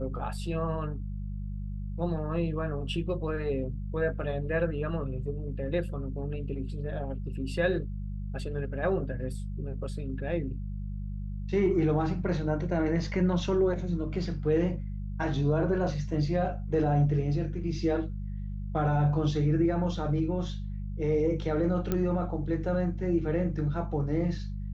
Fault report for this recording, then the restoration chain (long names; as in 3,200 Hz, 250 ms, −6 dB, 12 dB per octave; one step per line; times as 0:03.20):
mains hum 50 Hz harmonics 4 −35 dBFS
0:21.92: click −15 dBFS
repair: click removal
hum removal 50 Hz, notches 4